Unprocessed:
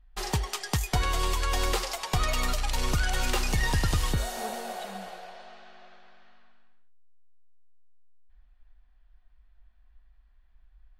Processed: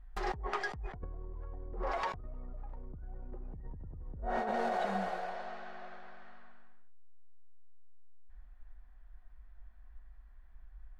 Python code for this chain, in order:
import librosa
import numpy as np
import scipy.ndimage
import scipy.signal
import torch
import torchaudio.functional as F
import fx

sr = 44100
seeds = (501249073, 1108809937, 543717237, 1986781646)

y = fx.env_lowpass_down(x, sr, base_hz=390.0, full_db=-22.0)
y = fx.band_shelf(y, sr, hz=5400.0, db=-10.0, octaves=2.5)
y = fx.over_compress(y, sr, threshold_db=-37.0, ratio=-1.0)
y = y * librosa.db_to_amplitude(-2.0)